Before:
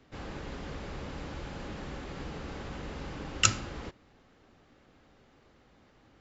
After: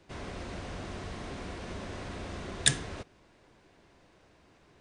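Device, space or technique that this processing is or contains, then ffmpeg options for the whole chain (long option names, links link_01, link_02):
nightcore: -af "asetrate=56889,aresample=44100"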